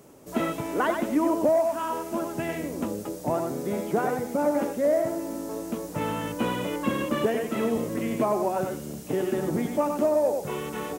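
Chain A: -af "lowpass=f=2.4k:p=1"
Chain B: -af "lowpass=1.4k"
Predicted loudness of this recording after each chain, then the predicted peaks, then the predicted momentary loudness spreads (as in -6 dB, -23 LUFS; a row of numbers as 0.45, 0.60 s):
-27.5, -27.5 LUFS; -12.5, -12.5 dBFS; 9, 9 LU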